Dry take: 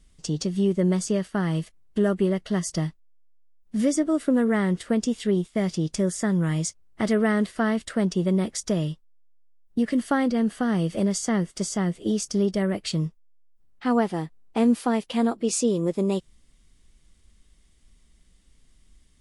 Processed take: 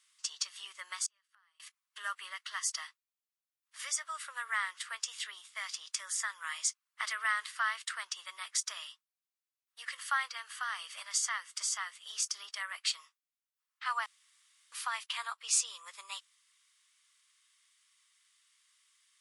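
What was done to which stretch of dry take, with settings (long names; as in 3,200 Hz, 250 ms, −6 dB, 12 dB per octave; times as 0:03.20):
0:01.06–0:01.60: gate with flip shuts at −30 dBFS, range −34 dB
0:08.86–0:11.23: linear-phase brick-wall high-pass 420 Hz
0:14.06–0:14.72: fill with room tone
whole clip: elliptic high-pass filter 1,100 Hz, stop band 80 dB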